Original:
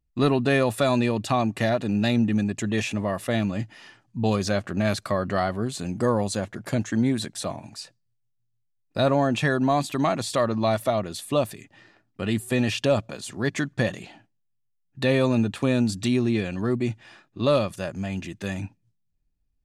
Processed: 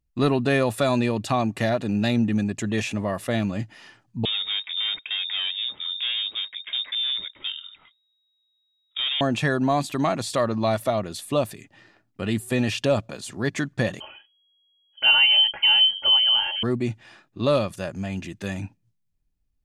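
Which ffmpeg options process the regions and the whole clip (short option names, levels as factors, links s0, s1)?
-filter_complex "[0:a]asettb=1/sr,asplit=3[s0][s1][s2];[s0]atrim=end=4.254[s3];[s1]atrim=start=4.25:end=9.21,asetpts=PTS-STARTPTS,afade=t=in:d=0.004:c=qsin,afade=t=out:st=4.956:d=0.004:c=qsin,asoftclip=type=hard:threshold=0.0631,aemphasis=mode=reproduction:type=50fm,lowpass=f=3200:t=q:w=0.5098,lowpass=f=3200:t=q:w=0.6013,lowpass=f=3200:t=q:w=0.9,lowpass=f=3200:t=q:w=2.563,afreqshift=-3800[s4];[s2]atrim=start=9.206[s5];[s3][s4]acrossfade=d=0.004:c1=hsin:c2=qsin[s6];[s6][s5]acrossfade=d=0.004:c1=qsin:c2=hsin,asettb=1/sr,asplit=3[s7][s8][s9];[s7]atrim=end=14.004[s10];[s8]atrim=start=14:end=16.63,asetpts=PTS-STARTPTS,afade=t=in:d=0.004:c=qsin,afade=t=out:st=2.626:d=0.004:c=qsin,aecho=1:1:3.7:1,atrim=end_sample=115983,lowpass=f=2800:t=q:w=0.5098,lowpass=f=2800:t=q:w=0.6013,lowpass=f=2800:t=q:w=0.9,lowpass=f=2800:t=q:w=2.563,afreqshift=-3300[s11];[s9]atrim=start=16.626[s12];[s10][s11]acrossfade=d=0.004:c1=hsin:c2=qsin[s13];[s13][s12]acrossfade=d=0.004:c1=qsin:c2=hsin"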